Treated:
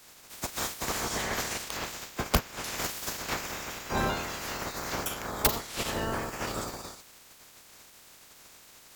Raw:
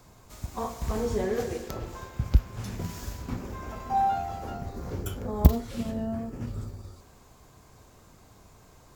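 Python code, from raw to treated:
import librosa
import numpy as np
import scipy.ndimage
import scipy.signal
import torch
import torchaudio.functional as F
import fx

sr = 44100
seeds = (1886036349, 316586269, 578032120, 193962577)

y = fx.spec_clip(x, sr, under_db=30)
y = fx.rider(y, sr, range_db=3, speed_s=0.5)
y = (np.mod(10.0 ** (10.5 / 20.0) * y + 1.0, 2.0) - 1.0) / 10.0 ** (10.5 / 20.0)
y = F.gain(torch.from_numpy(y), -2.5).numpy()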